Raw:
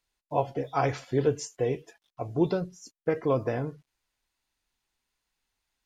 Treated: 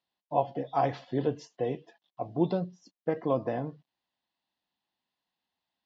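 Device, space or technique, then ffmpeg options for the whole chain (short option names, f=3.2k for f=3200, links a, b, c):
kitchen radio: -af "highpass=170,equalizer=f=190:t=q:w=4:g=4,equalizer=f=420:t=q:w=4:g=-7,equalizer=f=730:t=q:w=4:g=3,equalizer=f=1.4k:t=q:w=4:g=-10,equalizer=f=2.3k:t=q:w=4:g=-10,lowpass=f=4.1k:w=0.5412,lowpass=f=4.1k:w=1.3066"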